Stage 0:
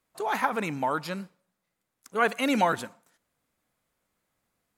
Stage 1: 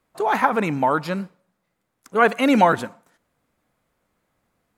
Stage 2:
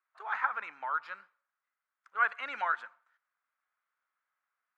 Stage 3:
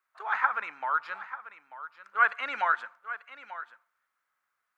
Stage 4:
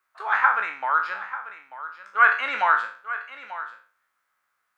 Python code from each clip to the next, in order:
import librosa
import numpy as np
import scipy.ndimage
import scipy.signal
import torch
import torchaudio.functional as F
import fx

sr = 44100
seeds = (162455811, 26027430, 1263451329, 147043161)

y1 = fx.high_shelf(x, sr, hz=2600.0, db=-9.0)
y1 = y1 * librosa.db_to_amplitude(9.0)
y2 = fx.ladder_bandpass(y1, sr, hz=1600.0, resonance_pct=50)
y2 = y2 * librosa.db_to_amplitude(-1.5)
y3 = y2 + 10.0 ** (-14.0 / 20.0) * np.pad(y2, (int(890 * sr / 1000.0), 0))[:len(y2)]
y3 = y3 * librosa.db_to_amplitude(5.0)
y4 = fx.spec_trails(y3, sr, decay_s=0.41)
y4 = y4 * librosa.db_to_amplitude(4.5)